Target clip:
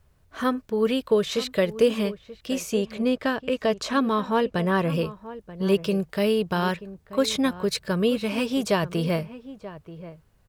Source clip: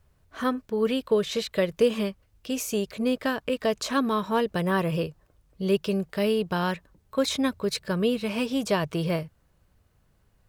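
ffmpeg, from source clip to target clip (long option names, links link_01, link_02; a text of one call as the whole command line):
ffmpeg -i in.wav -filter_complex "[0:a]asettb=1/sr,asplit=3[link_01][link_02][link_03];[link_01]atrim=end=2.584[link_04];[link_02]atrim=start=2.58:end=4.9,asetpts=PTS-STARTPTS,afade=type=in:duration=0.004:curve=qsin,afade=type=out:start_time=2.316:duration=0.004:curve=qsin,highshelf=frequency=8500:gain=-11[link_05];[link_03]atrim=start=4.896[link_06];[link_04][link_05]acrossfade=duration=0.004:curve1=hsin:curve2=qsin[link_07];[link_07][link_06]acrossfade=duration=0.004:curve1=qsin:curve2=hsin,asplit=2[link_08][link_09];[link_09]adelay=932.9,volume=-15dB,highshelf=frequency=4000:gain=-21[link_10];[link_08][link_10]amix=inputs=2:normalize=0,volume=2dB" out.wav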